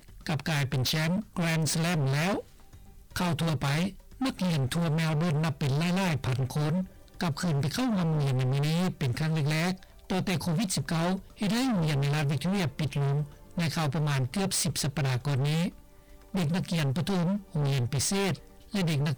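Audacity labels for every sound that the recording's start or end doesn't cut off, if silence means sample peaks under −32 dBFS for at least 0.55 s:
3.160000	15.690000	sound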